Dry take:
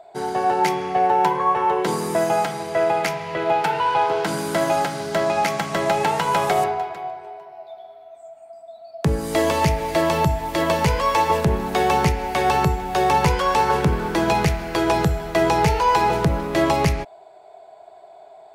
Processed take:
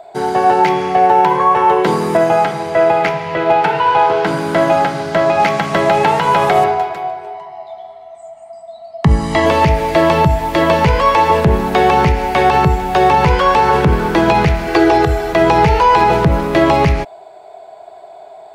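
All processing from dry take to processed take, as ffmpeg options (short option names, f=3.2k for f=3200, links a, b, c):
-filter_complex "[0:a]asettb=1/sr,asplit=3[a][b][c];[a]atrim=end=2.174[d];[b]atrim=start=2.17:end=5.4,asetpts=PTS-STARTPTS,afade=t=in:d=0.004:c=qsin,afade=t=out:st=3.226:d=0.004:c=qsin,highshelf=f=5.2k:g=-10.5,bandreject=f=51.54:t=h:w=4,bandreject=f=103.08:t=h:w=4,bandreject=f=154.62:t=h:w=4,bandreject=f=206.16:t=h:w=4,bandreject=f=257.7:t=h:w=4,bandreject=f=309.24:t=h:w=4,bandreject=f=360.78:t=h:w=4,bandreject=f=412.32:t=h:w=4,bandreject=f=463.86:t=h:w=4,bandreject=f=515.4:t=h:w=4,bandreject=f=566.94:t=h:w=4,bandreject=f=618.48:t=h:w=4,bandreject=f=670.02:t=h:w=4,bandreject=f=721.56:t=h:w=4,bandreject=f=773.1:t=h:w=4,bandreject=f=824.64:t=h:w=4,bandreject=f=876.18:t=h:w=4,bandreject=f=927.72:t=h:w=4,bandreject=f=979.26:t=h:w=4,bandreject=f=1.0308k:t=h:w=4,bandreject=f=1.08234k:t=h:w=4,bandreject=f=1.13388k:t=h:w=4,bandreject=f=1.18542k:t=h:w=4,bandreject=f=1.23696k:t=h:w=4,bandreject=f=1.2885k:t=h:w=4,bandreject=f=1.34004k:t=h:w=4,bandreject=f=1.39158k:t=h:w=4,asoftclip=type=hard:threshold=-12dB[e];[c]atrim=start=5.396[f];[d][e]acrossfade=d=0.004:c1=hsin:c2=qsin[g];[g][f]acrossfade=d=0.004:c1=qsin:c2=hsin,asettb=1/sr,asplit=3[h][i][j];[h]atrim=end=7.344[k];[i]atrim=start=7.34:end=9.46,asetpts=PTS-STARTPTS,afade=t=in:d=0.004:c=qsin,afade=t=out:st=2.116:d=0.004:c=qsin,lowpass=f=9.4k:w=0.5412,lowpass=f=9.4k:w=1.3066,bandreject=f=300:w=7,aecho=1:1:1:0.65,atrim=end_sample=93492[l];[j]atrim=start=9.456[m];[k][l]acrossfade=d=0.004:c1=hsin:c2=qsin[n];[n][m]acrossfade=d=0.004:c1=qsin:c2=hsin,asettb=1/sr,asplit=3[o][p][q];[o]atrim=end=14.674[r];[p]atrim=start=14.67:end=15.33,asetpts=PTS-STARTPTS,afade=t=in:d=0.004:c=qsin,afade=t=out:st=0.656:d=0.004:c=qsin,lowshelf=f=100:g=-9,aecho=1:1:2.6:0.94,atrim=end_sample=29106[s];[q]atrim=start=15.326[t];[r][s]acrossfade=d=0.004:c1=hsin:c2=qsin[u];[u][t]acrossfade=d=0.004:c1=qsin:c2=hsin,acrossover=split=4200[v][w];[w]acompressor=threshold=-47dB:ratio=4:attack=1:release=60[x];[v][x]amix=inputs=2:normalize=0,alimiter=level_in=9.5dB:limit=-1dB:release=50:level=0:latency=1,volume=-1dB"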